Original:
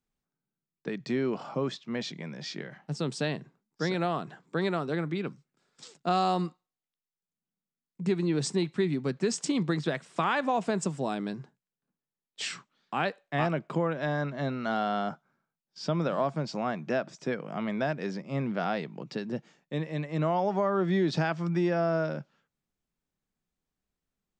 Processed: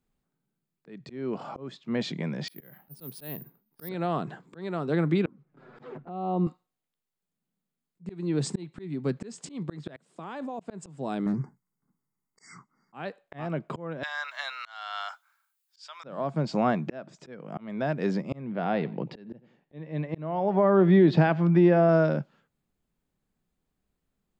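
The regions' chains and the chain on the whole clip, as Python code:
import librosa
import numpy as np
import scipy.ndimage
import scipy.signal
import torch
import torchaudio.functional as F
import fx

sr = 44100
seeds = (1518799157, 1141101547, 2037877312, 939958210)

y = fx.chain(x, sr, fx.steep_lowpass(hz=6200.0, slope=36),
    fx.resample_bad(factor=3, down='filtered', up='zero_stuff'), at=(2.48, 3.89))
y = fx.chain(y, sr, fx.lowpass(hz=1600.0, slope=12),
    fx.env_flanger(rest_ms=8.8, full_db=-25.5),
    fx.band_squash(depth_pct=100), at=(5.26, 6.47))
y = fx.chain(y, sr, fx.highpass(hz=170.0, slope=12),
    fx.peak_eq(hz=1900.0, db=-9.0, octaves=2.5),
    fx.level_steps(step_db=21), at=(9.96, 10.6))
y = fx.chain(y, sr, fx.brickwall_bandstop(low_hz=2200.0, high_hz=4600.0),
    fx.comb(ms=0.9, depth=0.61),
    fx.doppler_dist(depth_ms=0.23), at=(11.26, 12.94))
y = fx.chain(y, sr, fx.highpass(hz=970.0, slope=24),
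    fx.tilt_eq(slope=4.0), at=(14.03, 16.04))
y = fx.chain(y, sr, fx.lowpass(hz=3400.0, slope=12),
    fx.peak_eq(hz=1300.0, db=-4.5, octaves=0.26),
    fx.echo_feedback(ms=91, feedback_pct=30, wet_db=-22.0), at=(18.41, 21.89))
y = fx.peak_eq(y, sr, hz=5700.0, db=-6.5, octaves=0.24)
y = fx.auto_swell(y, sr, attack_ms=559.0)
y = fx.tilt_shelf(y, sr, db=3.0, hz=970.0)
y = y * librosa.db_to_amplitude(5.5)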